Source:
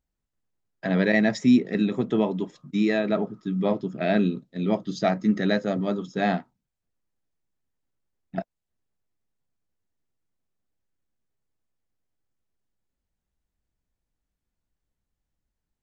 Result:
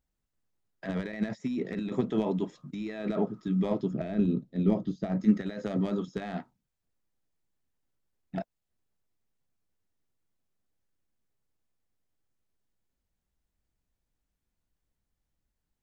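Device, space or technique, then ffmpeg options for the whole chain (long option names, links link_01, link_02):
de-esser from a sidechain: -filter_complex "[0:a]asplit=2[link_01][link_02];[link_02]highpass=5700,apad=whole_len=697789[link_03];[link_01][link_03]sidechaincompress=threshold=-59dB:ratio=12:attack=2.1:release=30,asettb=1/sr,asplit=3[link_04][link_05][link_06];[link_04]atrim=end=3.914[link_07];[link_05]atrim=start=3.91:end=5.21,asetpts=PTS-STARTPTS,afade=type=in:duration=0.004:curve=qsin,afade=type=out:start_time=1.296:duration=0.004:curve=qsin,tiltshelf=frequency=650:gain=6[link_08];[link_06]atrim=start=5.206[link_09];[link_07][link_08]acrossfade=duration=0.004:curve1=hsin:curve2=qsin[link_10];[link_10][link_09]acrossfade=duration=0.004:curve1=qsin:curve2=hsin"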